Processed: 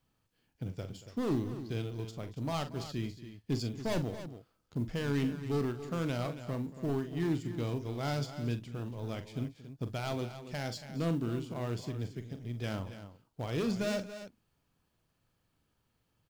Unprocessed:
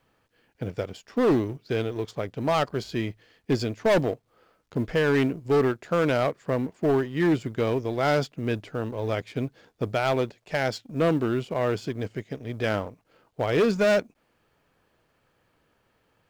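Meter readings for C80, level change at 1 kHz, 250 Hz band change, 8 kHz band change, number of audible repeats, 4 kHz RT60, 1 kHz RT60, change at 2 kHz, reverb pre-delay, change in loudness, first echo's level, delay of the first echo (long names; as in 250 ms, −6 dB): no reverb audible, −12.5 dB, −8.0 dB, −4.5 dB, 3, no reverb audible, no reverb audible, −13.5 dB, no reverb audible, −10.0 dB, −10.0 dB, 42 ms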